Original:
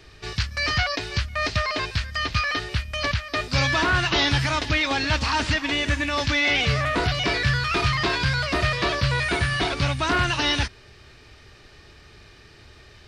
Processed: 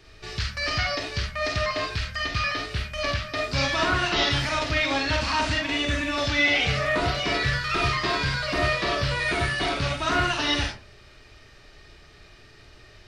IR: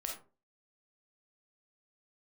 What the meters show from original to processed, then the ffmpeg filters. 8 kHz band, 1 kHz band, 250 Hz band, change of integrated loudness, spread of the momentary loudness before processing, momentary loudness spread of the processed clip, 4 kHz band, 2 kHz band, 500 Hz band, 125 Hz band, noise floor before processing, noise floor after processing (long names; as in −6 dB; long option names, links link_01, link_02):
−2.0 dB, −1.0 dB, −2.0 dB, −1.5 dB, 6 LU, 6 LU, −1.5 dB, −1.5 dB, +0.5 dB, −4.5 dB, −50 dBFS, −51 dBFS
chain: -filter_complex "[1:a]atrim=start_sample=2205[link_01];[0:a][link_01]afir=irnorm=-1:irlink=0,volume=-1.5dB"